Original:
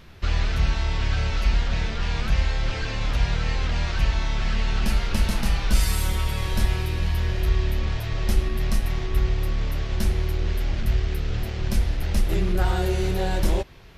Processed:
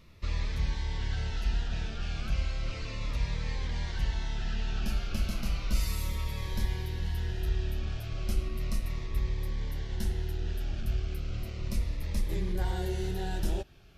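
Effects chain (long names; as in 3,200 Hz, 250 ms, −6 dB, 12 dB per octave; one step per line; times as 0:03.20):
0:04.42–0:07.05: parametric band 8,800 Hz −10 dB 0.2 octaves
phaser whose notches keep moving one way falling 0.34 Hz
level −8.5 dB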